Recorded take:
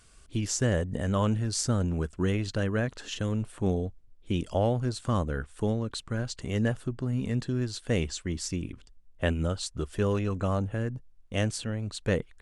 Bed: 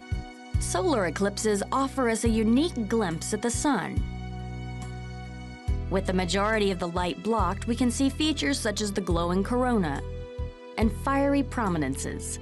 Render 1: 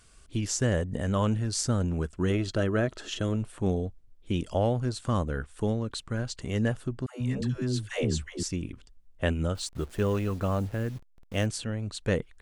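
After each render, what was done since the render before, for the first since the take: 2.3–3.36 small resonant body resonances 360/630/1300/3300 Hz, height 9 dB; 7.06–8.43 dispersion lows, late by 0.15 s, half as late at 500 Hz; 9.55–11.46 level-crossing sampler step -47 dBFS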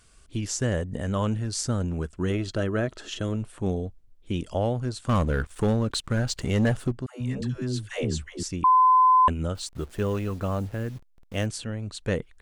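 5.09–6.92 sample leveller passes 2; 8.64–9.28 bleep 1020 Hz -14 dBFS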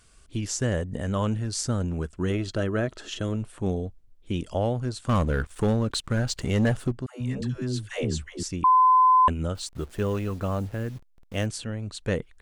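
nothing audible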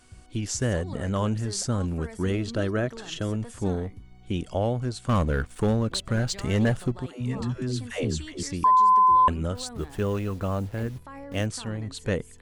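add bed -17.5 dB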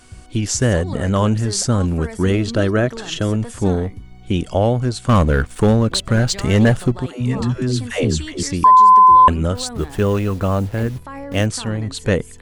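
gain +9.5 dB

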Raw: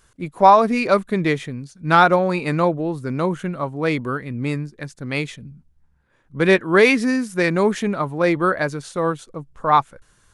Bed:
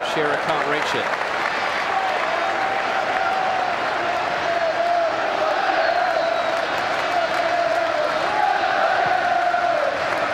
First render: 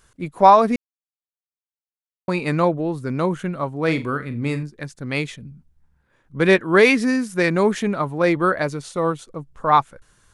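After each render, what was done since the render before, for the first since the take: 0.76–2.28 mute; 3.84–4.63 flutter echo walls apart 7.4 m, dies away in 0.24 s; 8.62–9.22 notch 1600 Hz, Q 7.3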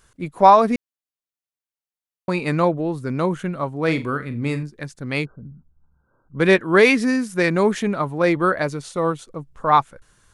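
5.25–6.38 brick-wall FIR low-pass 1600 Hz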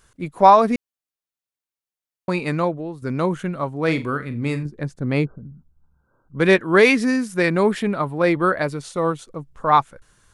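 2.35–3.02 fade out, to -10 dB; 4.65–5.38 tilt shelf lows +6.5 dB, about 1200 Hz; 7.39–8.77 bell 6300 Hz -11.5 dB 0.23 oct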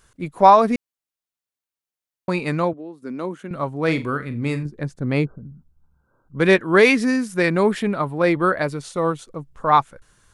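2.73–3.51 ladder high-pass 200 Hz, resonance 40%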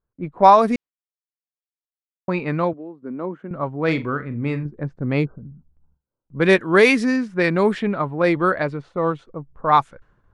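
low-pass opened by the level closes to 820 Hz, open at -11 dBFS; gate with hold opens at -50 dBFS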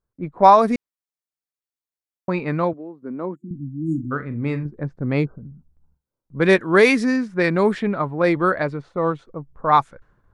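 3.35–4.11 spectral delete 360–6700 Hz; bell 2900 Hz -4 dB 0.44 oct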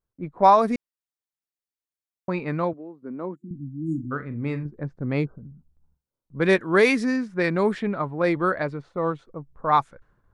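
gain -4 dB

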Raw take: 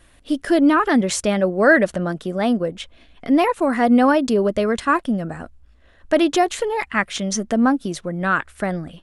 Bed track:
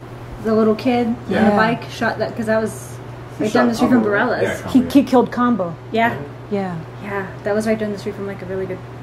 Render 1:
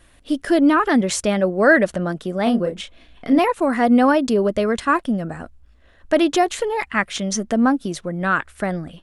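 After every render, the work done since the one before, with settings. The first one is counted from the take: 2.43–3.39 doubler 34 ms -6 dB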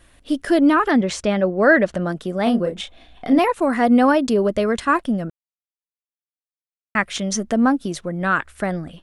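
0.91–1.95 air absorption 80 m; 2.76–3.34 small resonant body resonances 760/3600 Hz, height 11 dB, ringing for 25 ms; 5.3–6.95 mute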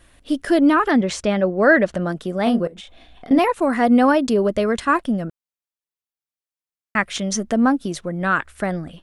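2.67–3.31 compressor 12:1, threshold -34 dBFS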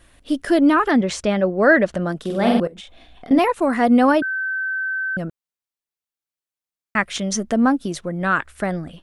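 2.2–2.6 flutter echo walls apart 8 m, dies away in 0.85 s; 4.22–5.17 bleep 1540 Hz -21 dBFS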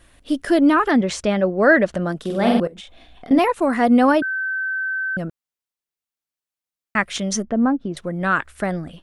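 7.42–7.97 tape spacing loss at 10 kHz 41 dB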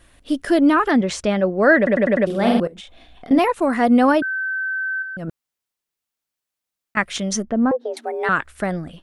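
1.77 stutter in place 0.10 s, 5 plays; 5.02–6.97 negative-ratio compressor -30 dBFS; 7.71–8.29 frequency shift +230 Hz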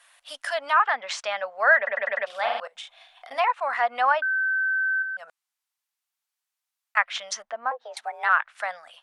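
inverse Chebyshev high-pass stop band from 370 Hz, stop band 40 dB; treble ducked by the level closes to 2600 Hz, closed at -20.5 dBFS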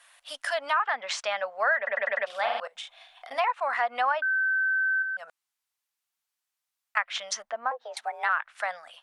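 compressor 3:1, threshold -23 dBFS, peak gain reduction 8 dB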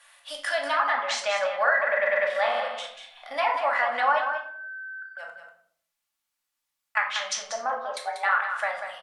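echo 0.19 s -8.5 dB; shoebox room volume 790 m³, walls furnished, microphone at 2.4 m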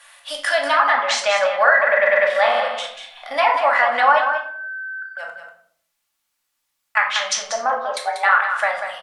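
gain +8 dB; limiter -2 dBFS, peak gain reduction 1.5 dB

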